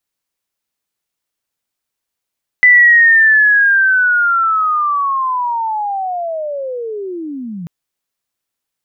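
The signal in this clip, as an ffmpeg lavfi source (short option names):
-f lavfi -i "aevalsrc='pow(10,(-3.5-19.5*t/5.04)/20)*sin(2*PI*(2000*t-1840*t*t/(2*5.04)))':d=5.04:s=44100"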